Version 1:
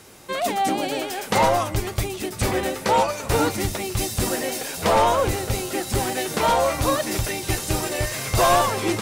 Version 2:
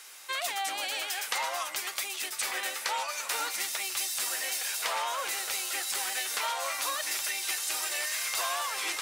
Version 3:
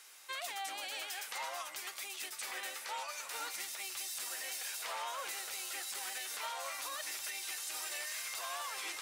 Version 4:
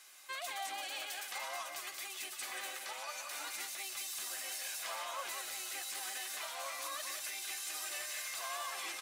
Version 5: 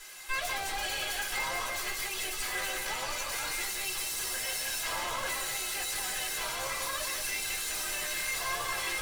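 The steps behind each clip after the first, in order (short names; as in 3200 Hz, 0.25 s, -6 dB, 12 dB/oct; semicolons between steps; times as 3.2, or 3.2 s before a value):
HPF 1400 Hz 12 dB/oct; compressor, threshold -30 dBFS, peak gain reduction 10 dB; gain +1.5 dB
limiter -22.5 dBFS, peak gain reduction 7 dB; gain -8 dB
notch comb 460 Hz; echo 0.179 s -6.5 dB
tube stage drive 46 dB, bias 0.7; reverb RT60 0.25 s, pre-delay 3 ms, DRR -4.5 dB; gain +8.5 dB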